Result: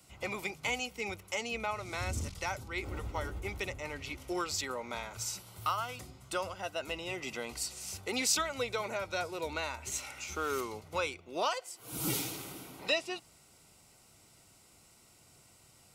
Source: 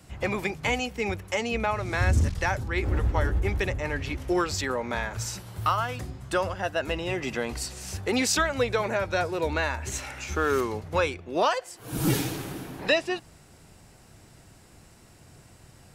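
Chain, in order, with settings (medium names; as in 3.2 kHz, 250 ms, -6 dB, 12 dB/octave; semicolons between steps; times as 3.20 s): Butterworth band-stop 1.7 kHz, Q 5.4; tilt EQ +2 dB/octave; trim -8 dB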